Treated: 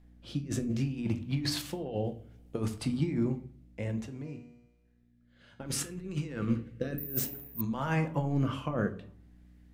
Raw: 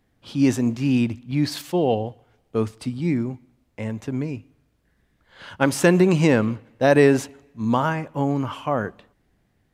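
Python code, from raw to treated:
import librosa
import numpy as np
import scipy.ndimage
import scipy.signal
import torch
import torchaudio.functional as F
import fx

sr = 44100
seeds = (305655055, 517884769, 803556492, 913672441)

y = fx.high_shelf(x, sr, hz=8200.0, db=9.0, at=(2.04, 2.74))
y = fx.spec_box(y, sr, start_s=5.7, length_s=1.31, low_hz=530.0, high_hz=1100.0, gain_db=-9)
y = fx.over_compress(y, sr, threshold_db=-24.0, ratio=-0.5)
y = fx.rotary(y, sr, hz=0.6)
y = fx.add_hum(y, sr, base_hz=60, snr_db=24)
y = fx.comb_fb(y, sr, f0_hz=120.0, decay_s=1.2, harmonics='all', damping=0.0, mix_pct=80, at=(4.05, 5.59), fade=0.02)
y = fx.room_shoebox(y, sr, seeds[0], volume_m3=300.0, walls='furnished', distance_m=0.77)
y = fx.resample_bad(y, sr, factor=3, down='none', up='zero_stuff', at=(6.98, 7.61))
y = F.gain(torch.from_numpy(y), -6.0).numpy()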